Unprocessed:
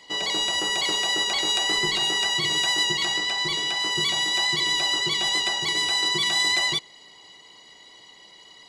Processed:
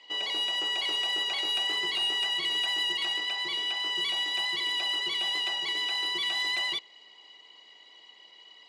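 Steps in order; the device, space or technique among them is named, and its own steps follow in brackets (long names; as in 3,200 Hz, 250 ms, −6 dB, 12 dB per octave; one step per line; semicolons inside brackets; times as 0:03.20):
intercom (band-pass filter 330–4,500 Hz; parametric band 2,700 Hz +10 dB 0.38 octaves; soft clipping −14.5 dBFS, distortion −21 dB)
level −7 dB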